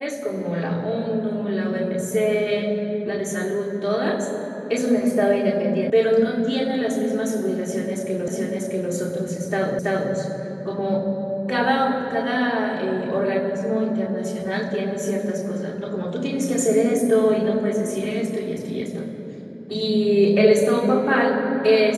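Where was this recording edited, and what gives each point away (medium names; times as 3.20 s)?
5.90 s: sound stops dead
8.28 s: repeat of the last 0.64 s
9.79 s: repeat of the last 0.33 s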